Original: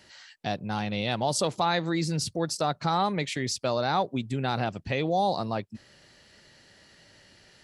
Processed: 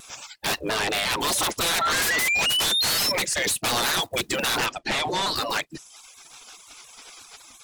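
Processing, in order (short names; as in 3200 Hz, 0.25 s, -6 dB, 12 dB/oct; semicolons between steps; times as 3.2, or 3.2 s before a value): block floating point 7-bit; spectral gate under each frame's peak -15 dB weak; reverb removal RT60 0.72 s; 0.61–1.2 high shelf 5200 Hz -10.5 dB; 1.81–3.12 painted sound rise 1300–5600 Hz -41 dBFS; sine folder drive 18 dB, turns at -20 dBFS; 4.66–5.36 air absorption 63 m; reverb, pre-delay 3 ms, DRR 27.5 dB; shaped vibrato saw down 5.7 Hz, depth 100 cents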